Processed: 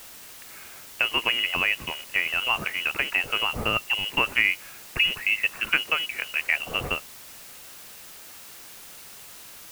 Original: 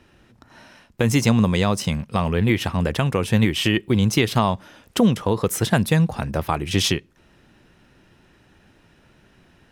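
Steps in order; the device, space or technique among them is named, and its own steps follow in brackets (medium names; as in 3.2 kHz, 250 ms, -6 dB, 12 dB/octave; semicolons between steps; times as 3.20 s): scrambled radio voice (band-pass 380–2800 Hz; frequency inversion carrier 3.1 kHz; white noise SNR 16 dB)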